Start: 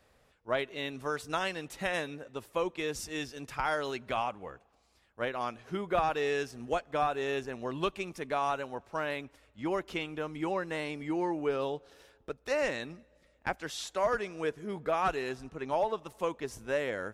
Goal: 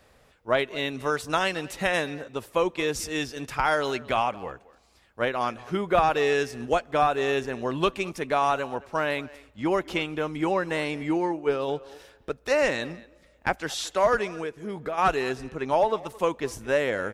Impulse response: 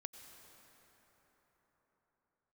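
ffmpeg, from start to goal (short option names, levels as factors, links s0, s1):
-filter_complex "[0:a]asplit=3[s0][s1][s2];[s0]afade=t=out:st=11.17:d=0.02[s3];[s1]agate=range=0.0224:threshold=0.0447:ratio=3:detection=peak,afade=t=in:st=11.17:d=0.02,afade=t=out:st=11.67:d=0.02[s4];[s2]afade=t=in:st=11.67:d=0.02[s5];[s3][s4][s5]amix=inputs=3:normalize=0,asplit=3[s6][s7][s8];[s6]afade=t=out:st=14.34:d=0.02[s9];[s7]acompressor=threshold=0.0126:ratio=4,afade=t=in:st=14.34:d=0.02,afade=t=out:st=14.97:d=0.02[s10];[s8]afade=t=in:st=14.97:d=0.02[s11];[s9][s10][s11]amix=inputs=3:normalize=0,asplit=2[s12][s13];[s13]adelay=220,highpass=300,lowpass=3400,asoftclip=type=hard:threshold=0.0562,volume=0.112[s14];[s12][s14]amix=inputs=2:normalize=0,volume=2.37"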